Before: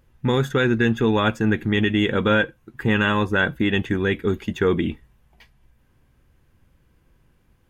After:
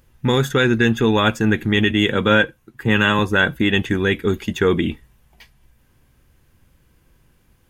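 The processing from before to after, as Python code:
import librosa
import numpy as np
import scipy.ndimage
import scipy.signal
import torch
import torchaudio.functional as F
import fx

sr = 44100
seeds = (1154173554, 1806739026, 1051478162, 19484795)

y = fx.high_shelf(x, sr, hz=3500.0, db=8.0)
y = fx.band_widen(y, sr, depth_pct=40, at=(1.91, 3.19))
y = F.gain(torch.from_numpy(y), 2.5).numpy()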